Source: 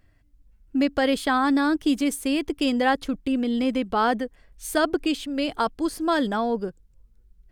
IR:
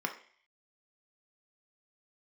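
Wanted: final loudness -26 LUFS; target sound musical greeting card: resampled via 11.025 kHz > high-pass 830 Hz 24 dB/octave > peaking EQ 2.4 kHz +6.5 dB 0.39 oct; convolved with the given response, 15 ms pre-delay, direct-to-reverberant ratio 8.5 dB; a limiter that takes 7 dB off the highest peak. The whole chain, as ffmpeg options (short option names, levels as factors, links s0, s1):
-filter_complex "[0:a]alimiter=limit=0.15:level=0:latency=1,asplit=2[s0][s1];[1:a]atrim=start_sample=2205,adelay=15[s2];[s1][s2]afir=irnorm=-1:irlink=0,volume=0.211[s3];[s0][s3]amix=inputs=2:normalize=0,aresample=11025,aresample=44100,highpass=f=830:w=0.5412,highpass=f=830:w=1.3066,equalizer=f=2400:t=o:w=0.39:g=6.5,volume=1.88"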